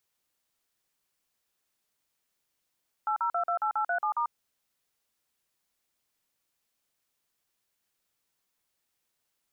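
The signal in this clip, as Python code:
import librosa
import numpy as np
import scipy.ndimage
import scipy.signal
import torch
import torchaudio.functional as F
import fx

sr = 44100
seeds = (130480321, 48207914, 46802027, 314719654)

y = fx.dtmf(sr, digits='80228837*', tone_ms=93, gap_ms=44, level_db=-28.0)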